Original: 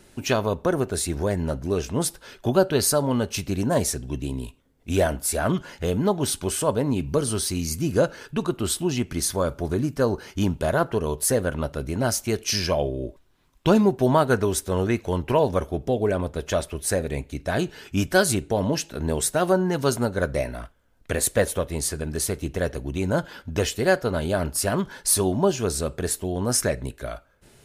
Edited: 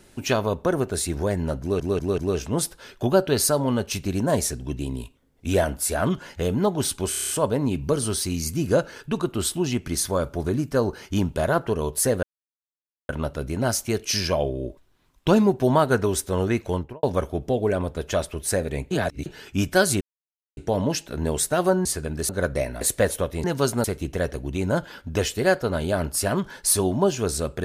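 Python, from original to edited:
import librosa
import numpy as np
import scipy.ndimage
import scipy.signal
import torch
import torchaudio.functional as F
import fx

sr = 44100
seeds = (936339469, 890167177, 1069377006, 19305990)

y = fx.studio_fade_out(x, sr, start_s=15.09, length_s=0.33)
y = fx.edit(y, sr, fx.stutter(start_s=1.61, slice_s=0.19, count=4),
    fx.stutter(start_s=6.54, slice_s=0.03, count=7),
    fx.insert_silence(at_s=11.48, length_s=0.86),
    fx.reverse_span(start_s=17.3, length_s=0.35),
    fx.insert_silence(at_s=18.4, length_s=0.56),
    fx.swap(start_s=19.68, length_s=0.4, other_s=21.81, other_length_s=0.44),
    fx.cut(start_s=20.6, length_s=0.58), tone=tone)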